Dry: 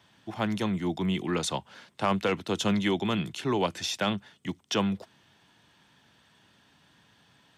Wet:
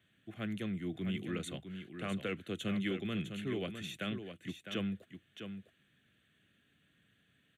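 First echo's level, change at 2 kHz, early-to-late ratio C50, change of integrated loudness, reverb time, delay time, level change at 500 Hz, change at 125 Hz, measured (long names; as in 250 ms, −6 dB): −8.5 dB, −8.5 dB, no reverb audible, −10.0 dB, no reverb audible, 655 ms, −11.0 dB, −7.5 dB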